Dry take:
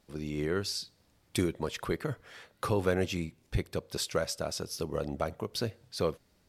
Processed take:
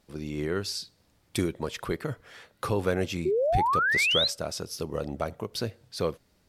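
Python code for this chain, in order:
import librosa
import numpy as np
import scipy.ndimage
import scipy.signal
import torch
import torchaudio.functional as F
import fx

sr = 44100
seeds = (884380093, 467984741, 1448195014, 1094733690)

y = fx.spec_paint(x, sr, seeds[0], shape='rise', start_s=3.25, length_s=1.03, low_hz=350.0, high_hz=4300.0, level_db=-26.0)
y = y * librosa.db_to_amplitude(1.5)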